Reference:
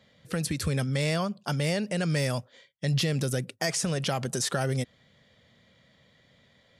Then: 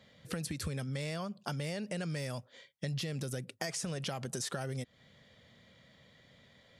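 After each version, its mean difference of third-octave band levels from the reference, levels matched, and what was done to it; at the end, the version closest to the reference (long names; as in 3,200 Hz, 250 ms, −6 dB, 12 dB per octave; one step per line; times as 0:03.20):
3.5 dB: downward compressor 4 to 1, threshold −36 dBFS, peak gain reduction 11.5 dB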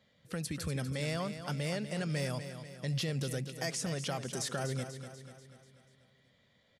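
5.0 dB: repeating echo 244 ms, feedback 53%, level −10 dB
level −8 dB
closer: first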